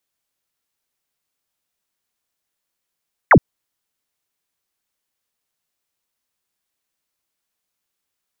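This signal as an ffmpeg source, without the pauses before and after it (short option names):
-f lavfi -i "aevalsrc='0.562*clip(t/0.002,0,1)*clip((0.07-t)/0.002,0,1)*sin(2*PI*2300*0.07/log(100/2300)*(exp(log(100/2300)*t/0.07)-1))':d=0.07:s=44100"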